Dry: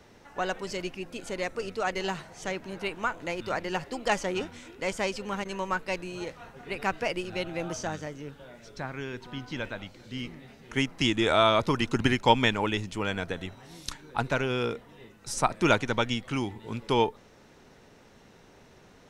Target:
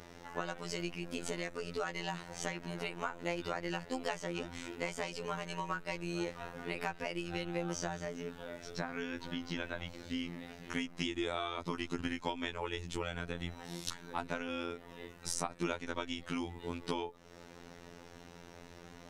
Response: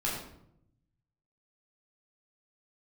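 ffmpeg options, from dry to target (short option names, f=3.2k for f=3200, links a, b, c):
-af "acompressor=threshold=-37dB:ratio=6,afftfilt=real='hypot(re,im)*cos(PI*b)':imag='0':win_size=2048:overlap=0.75,volume=5.5dB"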